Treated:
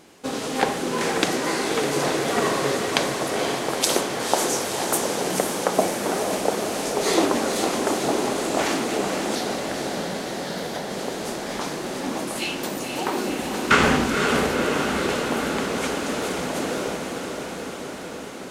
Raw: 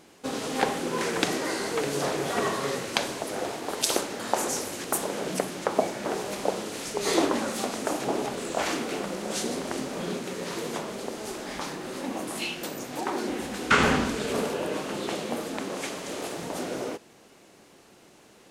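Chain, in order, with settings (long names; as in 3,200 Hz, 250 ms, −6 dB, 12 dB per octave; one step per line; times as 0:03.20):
0:09.35–0:10.91: phaser with its sweep stopped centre 1,700 Hz, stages 8
feedback delay with all-pass diffusion 504 ms, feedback 75%, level −5.5 dB
level +3.5 dB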